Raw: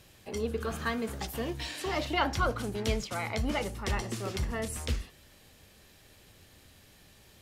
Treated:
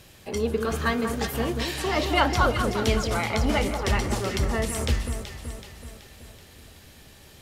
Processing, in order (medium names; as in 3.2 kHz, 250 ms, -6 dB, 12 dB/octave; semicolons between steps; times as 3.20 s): echo whose repeats swap between lows and highs 189 ms, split 1.5 kHz, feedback 72%, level -6 dB; trim +6.5 dB